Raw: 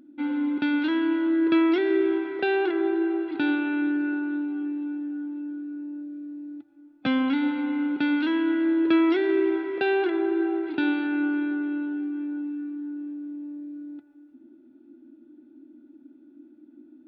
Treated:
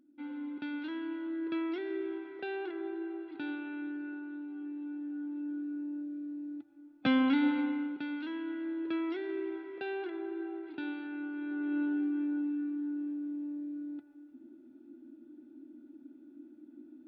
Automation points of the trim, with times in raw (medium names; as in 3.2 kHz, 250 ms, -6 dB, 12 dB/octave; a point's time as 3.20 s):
4.36 s -14 dB
5.58 s -3 dB
7.59 s -3 dB
8.03 s -14 dB
11.33 s -14 dB
11.81 s -2 dB